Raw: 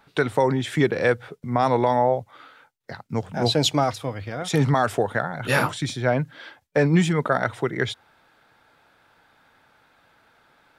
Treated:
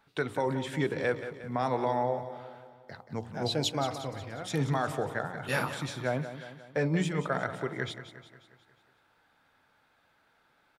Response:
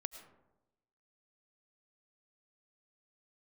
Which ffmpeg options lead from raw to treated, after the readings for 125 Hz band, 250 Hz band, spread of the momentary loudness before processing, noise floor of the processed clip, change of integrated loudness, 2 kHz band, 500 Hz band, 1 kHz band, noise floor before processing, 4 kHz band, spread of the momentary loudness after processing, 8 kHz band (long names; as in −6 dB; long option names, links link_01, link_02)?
−9.0 dB, −9.5 dB, 11 LU, −69 dBFS, −9.0 dB, −8.5 dB, −9.0 dB, −9.0 dB, −62 dBFS, −8.5 dB, 13 LU, −8.5 dB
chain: -filter_complex "[0:a]bandreject=frequency=58.88:width_type=h:width=4,bandreject=frequency=117.76:width_type=h:width=4,bandreject=frequency=176.64:width_type=h:width=4,bandreject=frequency=235.52:width_type=h:width=4,bandreject=frequency=294.4:width_type=h:width=4,bandreject=frequency=353.28:width_type=h:width=4,bandreject=frequency=412.16:width_type=h:width=4,bandreject=frequency=471.04:width_type=h:width=4,bandreject=frequency=529.92:width_type=h:width=4,bandreject=frequency=588.8:width_type=h:width=4,bandreject=frequency=647.68:width_type=h:width=4,bandreject=frequency=706.56:width_type=h:width=4,bandreject=frequency=765.44:width_type=h:width=4,bandreject=frequency=824.32:width_type=h:width=4,bandreject=frequency=883.2:width_type=h:width=4,bandreject=frequency=942.08:width_type=h:width=4,bandreject=frequency=1000.96:width_type=h:width=4,bandreject=frequency=1059.84:width_type=h:width=4,bandreject=frequency=1118.72:width_type=h:width=4,bandreject=frequency=1177.6:width_type=h:width=4,bandreject=frequency=1236.48:width_type=h:width=4,bandreject=frequency=1295.36:width_type=h:width=4,asplit=2[link_01][link_02];[link_02]aecho=0:1:179|358|537|716|895|1074:0.266|0.141|0.0747|0.0396|0.021|0.0111[link_03];[link_01][link_03]amix=inputs=2:normalize=0,volume=-9dB"